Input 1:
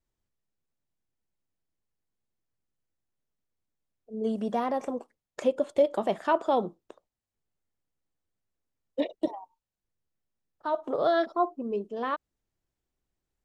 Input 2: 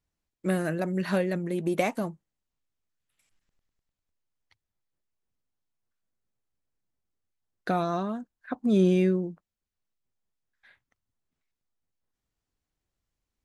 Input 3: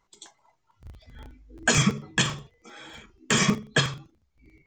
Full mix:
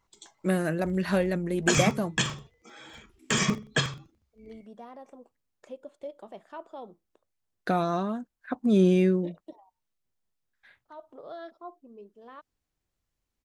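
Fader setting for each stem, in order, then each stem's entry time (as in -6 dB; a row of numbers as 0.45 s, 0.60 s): -17.0 dB, +1.0 dB, -3.5 dB; 0.25 s, 0.00 s, 0.00 s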